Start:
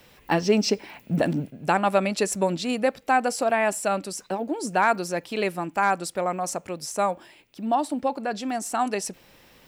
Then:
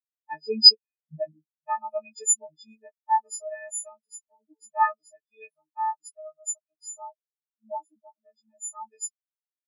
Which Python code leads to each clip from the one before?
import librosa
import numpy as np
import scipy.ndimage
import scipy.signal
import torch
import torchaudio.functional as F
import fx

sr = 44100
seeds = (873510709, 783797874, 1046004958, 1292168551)

y = fx.freq_snap(x, sr, grid_st=6)
y = fx.spectral_expand(y, sr, expansion=4.0)
y = F.gain(torch.from_numpy(y), 2.5).numpy()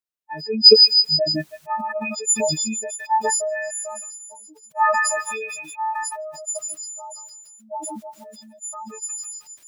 y = fx.echo_stepped(x, sr, ms=159, hz=2500.0, octaves=0.7, feedback_pct=70, wet_db=-10.5)
y = fx.sustainer(y, sr, db_per_s=24.0)
y = F.gain(torch.from_numpy(y), 1.5).numpy()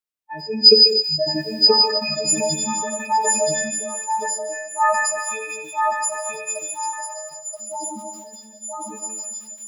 y = x + 10.0 ** (-4.0 / 20.0) * np.pad(x, (int(977 * sr / 1000.0), 0))[:len(x)]
y = fx.rev_gated(y, sr, seeds[0], gate_ms=290, shape='flat', drr_db=7.0)
y = F.gain(torch.from_numpy(y), -1.0).numpy()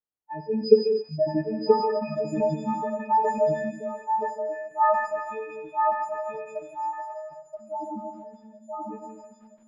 y = scipy.signal.sosfilt(scipy.signal.butter(2, 1000.0, 'lowpass', fs=sr, output='sos'), x)